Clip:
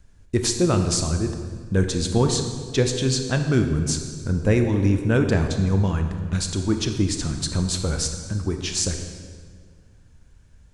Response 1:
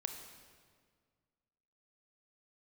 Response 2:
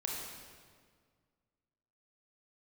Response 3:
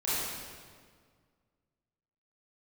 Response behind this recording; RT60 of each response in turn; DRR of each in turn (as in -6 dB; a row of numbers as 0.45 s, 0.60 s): 1; 1.8 s, 1.8 s, 1.8 s; 5.0 dB, -2.0 dB, -11.5 dB